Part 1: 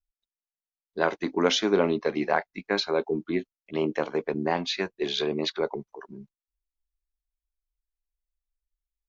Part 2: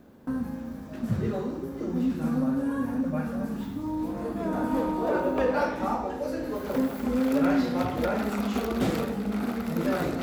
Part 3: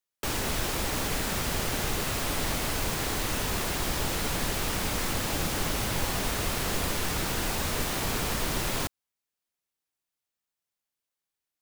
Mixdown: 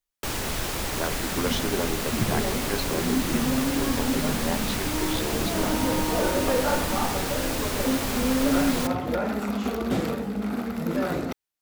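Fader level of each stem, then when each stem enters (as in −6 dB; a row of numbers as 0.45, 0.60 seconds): −6.5, +0.5, +0.5 decibels; 0.00, 1.10, 0.00 seconds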